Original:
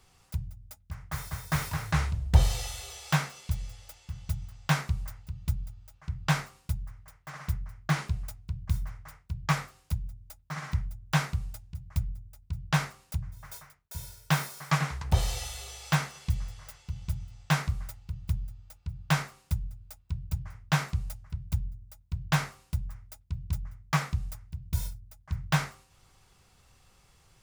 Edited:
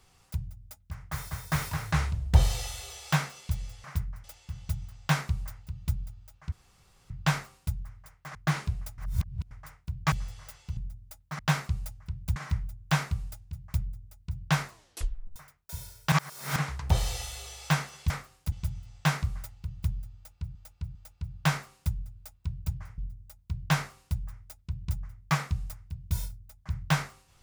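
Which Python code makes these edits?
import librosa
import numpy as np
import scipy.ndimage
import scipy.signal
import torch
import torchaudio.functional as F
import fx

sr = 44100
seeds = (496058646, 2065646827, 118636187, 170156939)

y = fx.edit(x, sr, fx.insert_room_tone(at_s=6.12, length_s=0.58),
    fx.move(start_s=7.37, length_s=0.4, to_s=3.84),
    fx.reverse_span(start_s=8.4, length_s=0.53),
    fx.swap(start_s=9.54, length_s=0.42, other_s=16.32, other_length_s=0.65),
    fx.tape_stop(start_s=12.88, length_s=0.7),
    fx.reverse_span(start_s=14.34, length_s=0.44),
    fx.repeat(start_s=18.6, length_s=0.4, count=3),
    fx.move(start_s=20.63, length_s=0.97, to_s=10.58), tone=tone)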